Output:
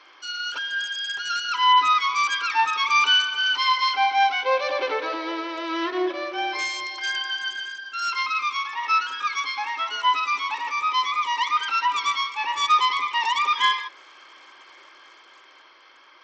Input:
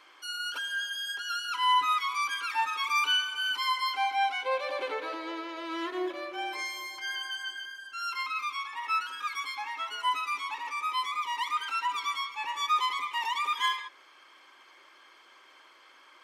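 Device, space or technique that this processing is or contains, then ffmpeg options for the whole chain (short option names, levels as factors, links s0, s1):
Bluetooth headset: -af "highpass=f=240:w=0.5412,highpass=f=240:w=1.3066,dynaudnorm=f=240:g=11:m=1.41,aresample=16000,aresample=44100,volume=1.78" -ar 32000 -c:a sbc -b:a 64k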